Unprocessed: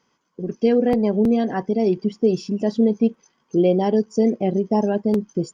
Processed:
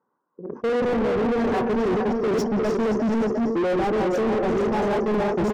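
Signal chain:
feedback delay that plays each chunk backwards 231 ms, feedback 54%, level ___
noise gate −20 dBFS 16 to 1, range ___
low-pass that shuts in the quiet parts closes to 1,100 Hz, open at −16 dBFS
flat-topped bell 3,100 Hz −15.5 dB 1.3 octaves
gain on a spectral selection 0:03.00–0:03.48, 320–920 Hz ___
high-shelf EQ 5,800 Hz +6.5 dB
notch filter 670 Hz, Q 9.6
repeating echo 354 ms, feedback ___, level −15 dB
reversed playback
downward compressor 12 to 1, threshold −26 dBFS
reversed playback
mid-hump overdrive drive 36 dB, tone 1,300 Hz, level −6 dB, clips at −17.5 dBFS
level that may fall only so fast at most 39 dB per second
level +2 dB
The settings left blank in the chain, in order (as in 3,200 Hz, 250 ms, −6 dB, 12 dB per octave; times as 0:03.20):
−5 dB, −31 dB, −8 dB, 39%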